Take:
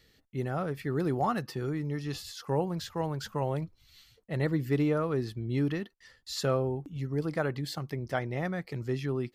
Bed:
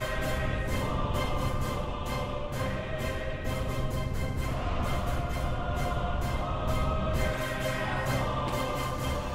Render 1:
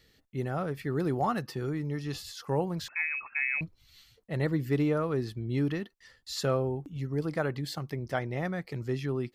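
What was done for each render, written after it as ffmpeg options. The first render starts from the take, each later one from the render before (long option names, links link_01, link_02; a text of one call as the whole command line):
ffmpeg -i in.wav -filter_complex "[0:a]asettb=1/sr,asplit=3[link_01][link_02][link_03];[link_01]atrim=end=2.884[link_04];[link_02]atrim=start=2.88:end=3.61,asetpts=PTS-STARTPTS,afade=type=in:duration=0.004:curve=qsin,afade=type=out:start_time=0.726:duration=0.004:curve=qsin,lowpass=frequency=2300:width_type=q:width=0.5098,lowpass=frequency=2300:width_type=q:width=0.6013,lowpass=frequency=2300:width_type=q:width=0.9,lowpass=frequency=2300:width_type=q:width=2.563,afreqshift=-2700[link_05];[link_03]atrim=start=3.606[link_06];[link_04][link_05]acrossfade=duration=0.004:curve1=hsin:curve2=qsin[link_07];[link_07][link_06]acrossfade=duration=0.004:curve1=qsin:curve2=hsin" out.wav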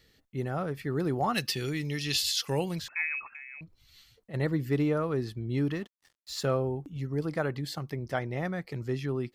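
ffmpeg -i in.wav -filter_complex "[0:a]asplit=3[link_01][link_02][link_03];[link_01]afade=type=out:start_time=1.33:duration=0.02[link_04];[link_02]highshelf=frequency=1800:width_type=q:width=1.5:gain=13,afade=type=in:start_time=1.33:duration=0.02,afade=type=out:start_time=2.78:duration=0.02[link_05];[link_03]afade=type=in:start_time=2.78:duration=0.02[link_06];[link_04][link_05][link_06]amix=inputs=3:normalize=0,asplit=3[link_07][link_08][link_09];[link_07]afade=type=out:start_time=3.28:duration=0.02[link_10];[link_08]acompressor=threshold=-44dB:ratio=4:attack=3.2:release=140:knee=1:detection=peak,afade=type=in:start_time=3.28:duration=0.02,afade=type=out:start_time=4.33:duration=0.02[link_11];[link_09]afade=type=in:start_time=4.33:duration=0.02[link_12];[link_10][link_11][link_12]amix=inputs=3:normalize=0,asettb=1/sr,asplit=3[link_13][link_14][link_15];[link_13]atrim=end=5.724[link_16];[link_14]atrim=start=5.72:end=6.45,asetpts=PTS-STARTPTS,afade=type=in:duration=0.004:curve=qsin,afade=type=out:start_time=0.726:duration=0.004:curve=qsin,aeval=exprs='sgn(val(0))*max(abs(val(0))-0.00224,0)':channel_layout=same[link_17];[link_15]atrim=start=6.446[link_18];[link_16][link_17]acrossfade=duration=0.004:curve1=hsin:curve2=qsin[link_19];[link_19][link_18]acrossfade=duration=0.004:curve1=qsin:curve2=hsin" out.wav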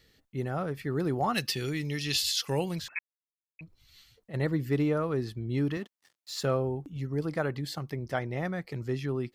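ffmpeg -i in.wav -filter_complex "[0:a]asettb=1/sr,asplit=3[link_01][link_02][link_03];[link_01]atrim=end=5.774[link_04];[link_02]atrim=start=5.77:end=6.42,asetpts=PTS-STARTPTS,afade=type=in:duration=0.004:curve=qsin,afade=type=out:start_time=0.646:duration=0.004:curve=qsin,highpass=140[link_05];[link_03]atrim=start=6.416[link_06];[link_04][link_05]acrossfade=duration=0.004:curve1=hsin:curve2=qsin[link_07];[link_07][link_06]acrossfade=duration=0.004:curve1=qsin:curve2=hsin,asplit=3[link_08][link_09][link_10];[link_08]atrim=end=2.99,asetpts=PTS-STARTPTS,afade=type=out:start_time=2.986:duration=0.004:curve=hsin[link_11];[link_09]atrim=start=2.99:end=3.59,asetpts=PTS-STARTPTS,volume=0[link_12];[link_10]atrim=start=3.59,asetpts=PTS-STARTPTS,afade=type=in:duration=0.004:curve=hsin[link_13];[link_11][link_12][link_13]concat=n=3:v=0:a=1" out.wav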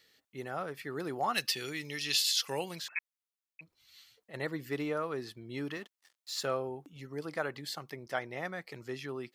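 ffmpeg -i in.wav -af "highpass=frequency=740:poles=1" out.wav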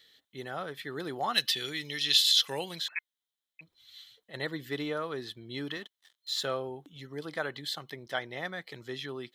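ffmpeg -i in.wav -af "superequalizer=11b=1.41:13b=3.16" out.wav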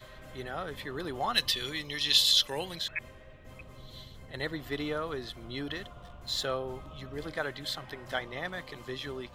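ffmpeg -i in.wav -i bed.wav -filter_complex "[1:a]volume=-18.5dB[link_01];[0:a][link_01]amix=inputs=2:normalize=0" out.wav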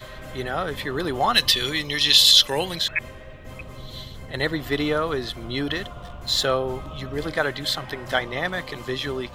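ffmpeg -i in.wav -af "volume=10.5dB,alimiter=limit=-3dB:level=0:latency=1" out.wav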